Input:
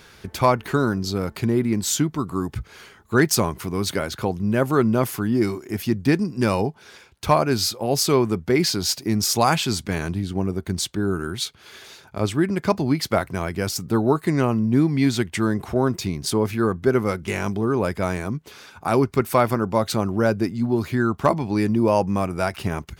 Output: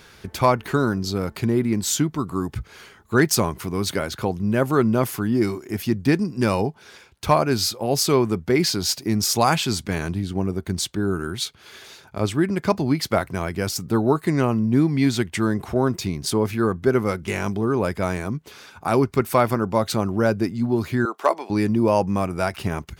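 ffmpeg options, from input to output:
-filter_complex "[0:a]asettb=1/sr,asplit=3[s0][s1][s2];[s0]atrim=end=21.054[s3];[s1]atrim=start=21.05:end=21.5,asetpts=PTS-STARTPTS,afade=t=in:d=0.004:c=qsin,afade=t=out:st=0.446:d=0.004:c=qsin,highpass=f=390:w=0.5412,highpass=f=390:w=1.3066[s4];[s2]atrim=start=21.496[s5];[s3][s4]acrossfade=d=0.004:c1=hsin:c2=qsin[s6];[s6][s5]acrossfade=d=0.004:c1=qsin:c2=hsin"

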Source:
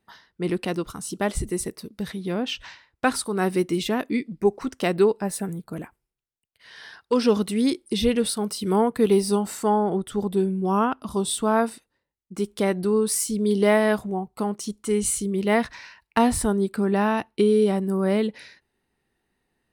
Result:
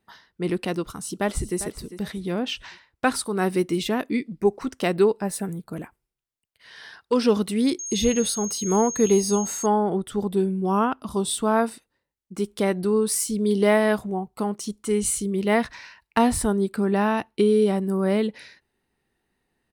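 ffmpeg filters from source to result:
-filter_complex "[0:a]asplit=2[s0][s1];[s1]afade=t=in:st=0.84:d=0.01,afade=t=out:st=1.58:d=0.01,aecho=0:1:400|800|1200:0.211349|0.0634047|0.0190214[s2];[s0][s2]amix=inputs=2:normalize=0,asettb=1/sr,asplit=3[s3][s4][s5];[s3]atrim=end=7.794[s6];[s4]atrim=start=7.79:end=9.66,asetpts=PTS-STARTPTS,afade=t=in:d=0.004:c=qsin,afade=t=out:st=1.866:d=0.004:c=qsin,aeval=exprs='val(0)+0.0316*sin(2*PI*6500*n/s)':c=same[s7];[s5]atrim=start=9.656[s8];[s6][s7]acrossfade=d=0.004:c1=hsin:c2=qsin[s9];[s9][s8]acrossfade=d=0.004:c1=qsin:c2=hsin"

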